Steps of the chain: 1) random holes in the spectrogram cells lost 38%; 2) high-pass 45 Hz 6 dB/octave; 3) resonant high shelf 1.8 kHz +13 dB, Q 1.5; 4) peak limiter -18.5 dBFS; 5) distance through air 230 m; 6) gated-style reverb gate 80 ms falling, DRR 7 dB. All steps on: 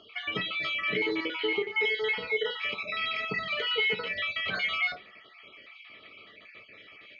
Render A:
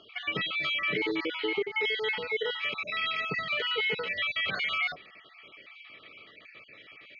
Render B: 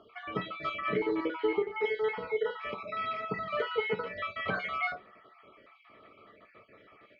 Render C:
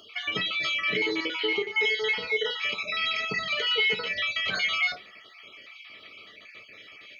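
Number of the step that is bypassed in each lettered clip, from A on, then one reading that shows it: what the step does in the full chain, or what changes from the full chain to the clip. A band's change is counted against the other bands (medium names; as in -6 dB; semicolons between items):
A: 6, momentary loudness spread change +1 LU; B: 3, 4 kHz band -15.0 dB; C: 5, 4 kHz band +4.0 dB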